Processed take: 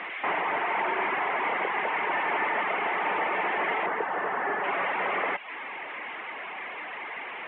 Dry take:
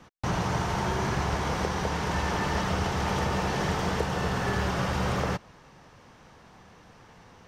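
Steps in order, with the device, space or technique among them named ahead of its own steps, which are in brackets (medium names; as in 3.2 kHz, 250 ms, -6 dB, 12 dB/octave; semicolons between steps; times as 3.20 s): digital answering machine (band-pass 330–3300 Hz; one-bit delta coder 16 kbps, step -36.5 dBFS; cabinet simulation 400–3400 Hz, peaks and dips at 510 Hz -6 dB, 1.4 kHz -3 dB, 2.1 kHz +9 dB); reverb removal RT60 0.56 s; 3.86–4.64 s: high-order bell 3.5 kHz -9 dB; trim +6.5 dB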